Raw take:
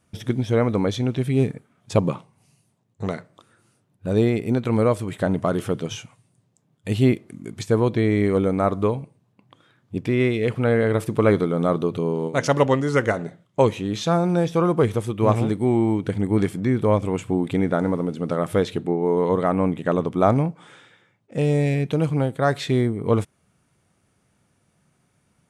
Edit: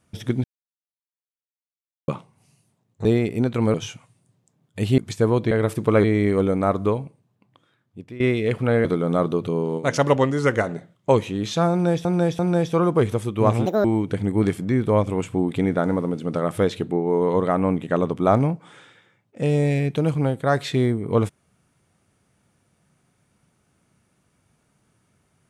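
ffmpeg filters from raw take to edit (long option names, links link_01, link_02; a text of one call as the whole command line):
ffmpeg -i in.wav -filter_complex "[0:a]asplit=14[link_01][link_02][link_03][link_04][link_05][link_06][link_07][link_08][link_09][link_10][link_11][link_12][link_13][link_14];[link_01]atrim=end=0.44,asetpts=PTS-STARTPTS,afade=type=out:start_time=0.436:duration=0.004:curve=hsin[link_15];[link_02]atrim=start=0.44:end=2.08,asetpts=PTS-STARTPTS,volume=0[link_16];[link_03]atrim=start=2.08:end=3.052,asetpts=PTS-STARTPTS,afade=type=in:duration=0.004:curve=hsin[link_17];[link_04]atrim=start=4.158:end=4.852[link_18];[link_05]atrim=start=5.828:end=7.072[link_19];[link_06]atrim=start=7.478:end=8.012[link_20];[link_07]atrim=start=10.818:end=11.352[link_21];[link_08]atrim=start=8.008:end=10.17,asetpts=PTS-STARTPTS,afade=type=out:start_time=0.812:duration=1.35:silence=0.141254[link_22];[link_09]atrim=start=10.17:end=10.822,asetpts=PTS-STARTPTS,afade=type=in:duration=0.004:curve=hsin:silence=0.141254[link_23];[link_10]atrim=start=11.348:end=14.552[link_24];[link_11]atrim=start=14.208:end=14.552[link_25];[link_12]atrim=start=14.208:end=15.484[link_26];[link_13]atrim=start=15.48:end=15.8,asetpts=PTS-STARTPTS,asetrate=76293,aresample=44100,atrim=end_sample=8157,asetpts=PTS-STARTPTS[link_27];[link_14]atrim=start=15.796[link_28];[link_15][link_16][link_17]concat=n=3:v=0:a=1[link_29];[link_29][link_18]acrossfade=duration=0.004:curve1=hsin:curve2=hsin[link_30];[link_30][link_19]acrossfade=duration=0.004:curve1=hsin:curve2=hsin[link_31];[link_31][link_20]acrossfade=duration=0.004:curve1=hsin:curve2=hsin[link_32];[link_32][link_21]acrossfade=duration=0.004:curve1=hsin:curve2=hsin[link_33];[link_22][link_23]concat=n=2:v=0:a=1[link_34];[link_33][link_34]acrossfade=duration=0.004:curve1=hsin:curve2=hsin[link_35];[link_35][link_24]acrossfade=duration=0.004:curve1=hsin:curve2=hsin[link_36];[link_36][link_25]acrossfade=duration=0.004:curve1=hsin:curve2=hsin[link_37];[link_37][link_26]acrossfade=duration=0.004:curve1=hsin:curve2=hsin[link_38];[link_38][link_27]acrossfade=duration=0.004:curve1=hsin:curve2=hsin[link_39];[link_39][link_28]acrossfade=duration=0.004:curve1=hsin:curve2=hsin" out.wav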